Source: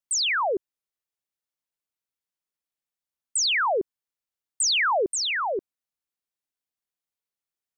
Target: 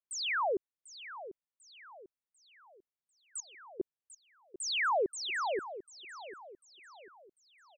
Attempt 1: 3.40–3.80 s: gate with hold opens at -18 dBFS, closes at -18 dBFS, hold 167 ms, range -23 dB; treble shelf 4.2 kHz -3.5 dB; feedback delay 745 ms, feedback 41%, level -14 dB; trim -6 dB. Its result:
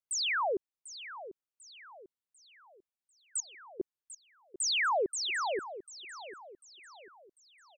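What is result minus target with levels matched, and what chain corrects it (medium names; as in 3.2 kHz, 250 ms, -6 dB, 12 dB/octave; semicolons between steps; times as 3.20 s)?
8 kHz band +4.5 dB
3.40–3.80 s: gate with hold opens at -18 dBFS, closes at -18 dBFS, hold 167 ms, range -23 dB; treble shelf 4.2 kHz -12 dB; feedback delay 745 ms, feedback 41%, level -14 dB; trim -6 dB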